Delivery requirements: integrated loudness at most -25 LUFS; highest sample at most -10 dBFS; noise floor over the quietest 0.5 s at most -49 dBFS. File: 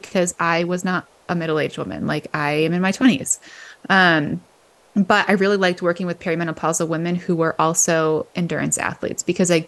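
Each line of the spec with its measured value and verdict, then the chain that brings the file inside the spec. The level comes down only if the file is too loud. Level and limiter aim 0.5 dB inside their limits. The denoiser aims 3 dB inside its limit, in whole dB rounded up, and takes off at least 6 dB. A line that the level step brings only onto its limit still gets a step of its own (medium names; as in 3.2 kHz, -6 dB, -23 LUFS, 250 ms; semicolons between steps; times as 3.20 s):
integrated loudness -19.5 LUFS: fail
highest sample -3.0 dBFS: fail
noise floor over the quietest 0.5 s -54 dBFS: pass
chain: trim -6 dB; peak limiter -10.5 dBFS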